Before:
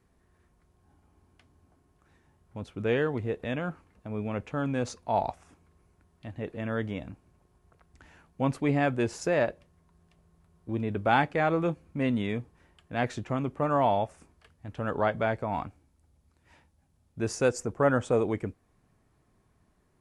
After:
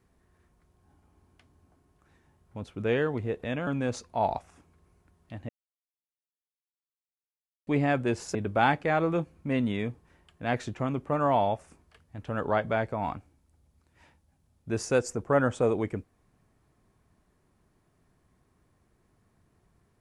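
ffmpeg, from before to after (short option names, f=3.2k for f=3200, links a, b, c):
-filter_complex "[0:a]asplit=5[a][b][c][d][e];[a]atrim=end=3.672[f];[b]atrim=start=4.598:end=6.42,asetpts=PTS-STARTPTS,afade=t=out:st=1.818:d=0.004:c=hsin[g];[c]atrim=start=6.42:end=8.6,asetpts=PTS-STARTPTS,volume=0[h];[d]atrim=start=8.6:end=9.282,asetpts=PTS-STARTPTS,afade=t=in:d=0.004:c=hsin[i];[e]atrim=start=10.848[j];[g][h][i]concat=n=3:v=0:a=1[k];[f][k]acrossfade=d=0.004:c1=hsin:c2=hsin[l];[l][j]acrossfade=d=0.004:c1=hsin:c2=hsin"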